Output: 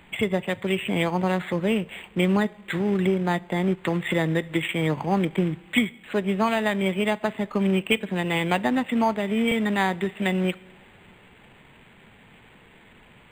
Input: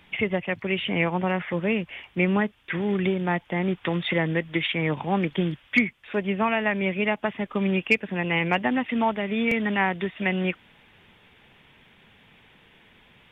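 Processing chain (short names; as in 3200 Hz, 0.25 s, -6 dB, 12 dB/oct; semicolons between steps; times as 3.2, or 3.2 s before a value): in parallel at -1.5 dB: compressor 5:1, threshold -35 dBFS, peak gain reduction 18 dB; on the sum: two-slope reverb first 0.47 s, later 3 s, from -16 dB, DRR 17.5 dB; companded quantiser 6-bit; decimation joined by straight lines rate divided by 8×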